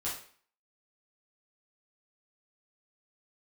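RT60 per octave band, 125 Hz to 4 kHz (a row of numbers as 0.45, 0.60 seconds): 0.40, 0.50, 0.45, 0.50, 0.50, 0.45 seconds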